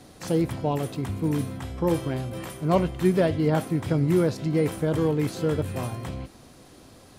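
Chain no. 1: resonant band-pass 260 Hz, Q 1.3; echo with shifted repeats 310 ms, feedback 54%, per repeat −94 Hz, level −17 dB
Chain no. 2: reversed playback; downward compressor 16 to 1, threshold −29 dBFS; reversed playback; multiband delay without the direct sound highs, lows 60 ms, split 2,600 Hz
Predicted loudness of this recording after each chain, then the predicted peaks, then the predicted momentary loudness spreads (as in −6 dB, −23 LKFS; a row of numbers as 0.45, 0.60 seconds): −29.5, −34.5 LKFS; −13.5, −19.5 dBFS; 11, 6 LU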